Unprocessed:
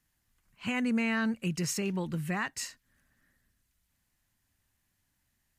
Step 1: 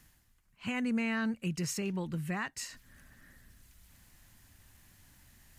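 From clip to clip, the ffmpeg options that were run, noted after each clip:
ffmpeg -i in.wav -af "areverse,acompressor=mode=upward:threshold=-41dB:ratio=2.5,areverse,lowshelf=frequency=120:gain=4,volume=-3.5dB" out.wav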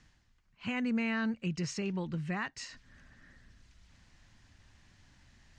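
ffmpeg -i in.wav -af "lowpass=frequency=6100:width=0.5412,lowpass=frequency=6100:width=1.3066" out.wav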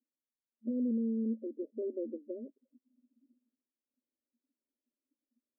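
ffmpeg -i in.wav -af "afftfilt=real='re*between(b*sr/4096,220,630)':imag='im*between(b*sr/4096,220,630)':win_size=4096:overlap=0.75,afftdn=noise_reduction=27:noise_floor=-52,alimiter=level_in=7dB:limit=-24dB:level=0:latency=1,volume=-7dB,volume=4dB" out.wav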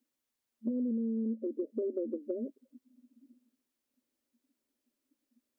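ffmpeg -i in.wav -af "acompressor=threshold=-40dB:ratio=6,volume=9dB" out.wav

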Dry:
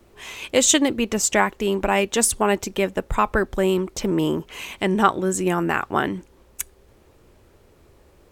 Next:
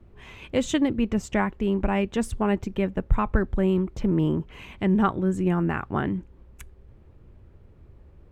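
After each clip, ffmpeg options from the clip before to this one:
ffmpeg -i in.wav -af "bass=frequency=250:gain=14,treble=frequency=4000:gain=-15,volume=-7.5dB" out.wav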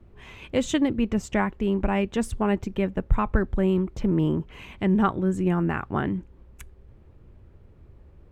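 ffmpeg -i in.wav -af anull out.wav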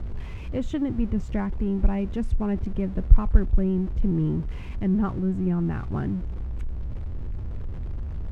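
ffmpeg -i in.wav -af "aeval=exprs='val(0)+0.5*0.0299*sgn(val(0))':channel_layout=same,aemphasis=mode=reproduction:type=riaa,volume=-10.5dB" out.wav

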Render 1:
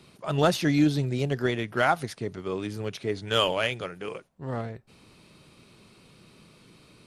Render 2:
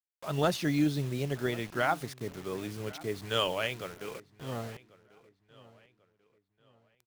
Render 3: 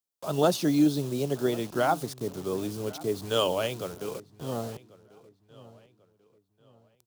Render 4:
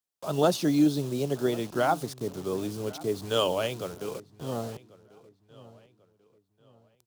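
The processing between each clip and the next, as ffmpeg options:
ffmpeg -i in.wav -filter_complex "[0:a]acrusher=bits=6:mix=0:aa=0.000001,asplit=2[link_01][link_02];[link_02]adelay=1091,lowpass=frequency=4900:poles=1,volume=-20.5dB,asplit=2[link_03][link_04];[link_04]adelay=1091,lowpass=frequency=4900:poles=1,volume=0.36,asplit=2[link_05][link_06];[link_06]adelay=1091,lowpass=frequency=4900:poles=1,volume=0.36[link_07];[link_01][link_03][link_05][link_07]amix=inputs=4:normalize=0,volume=-5.5dB" out.wav
ffmpeg -i in.wav -filter_complex "[0:a]acrossover=split=190[link_01][link_02];[link_01]acompressor=threshold=-47dB:ratio=6[link_03];[link_02]equalizer=frequency=2000:width=1.2:gain=-14[link_04];[link_03][link_04]amix=inputs=2:normalize=0,highpass=56,volume=7dB" out.wav
ffmpeg -i in.wav -af "highshelf=frequency=12000:gain=-4" out.wav

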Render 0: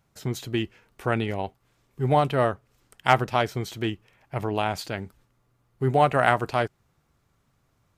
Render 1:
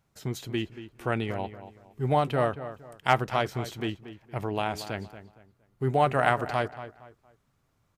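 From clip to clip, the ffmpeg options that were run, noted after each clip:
ffmpeg -i in.wav -filter_complex "[0:a]asplit=2[link_01][link_02];[link_02]adelay=232,lowpass=frequency=2800:poles=1,volume=-12.5dB,asplit=2[link_03][link_04];[link_04]adelay=232,lowpass=frequency=2800:poles=1,volume=0.32,asplit=2[link_05][link_06];[link_06]adelay=232,lowpass=frequency=2800:poles=1,volume=0.32[link_07];[link_01][link_03][link_05][link_07]amix=inputs=4:normalize=0,volume=-3.5dB" out.wav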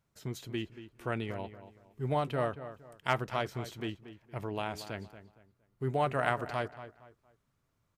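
ffmpeg -i in.wav -af "bandreject=frequency=780:width=12,volume=-6dB" out.wav

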